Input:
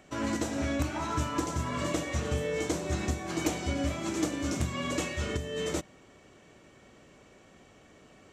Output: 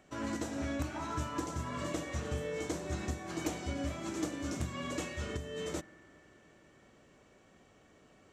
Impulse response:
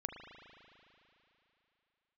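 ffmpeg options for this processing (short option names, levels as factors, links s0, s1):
-filter_complex "[0:a]asplit=2[s0][s1];[s1]highshelf=f=2800:t=q:w=3:g=-13.5[s2];[1:a]atrim=start_sample=2205,asetrate=37485,aresample=44100[s3];[s2][s3]afir=irnorm=-1:irlink=0,volume=0.158[s4];[s0][s4]amix=inputs=2:normalize=0,volume=0.447"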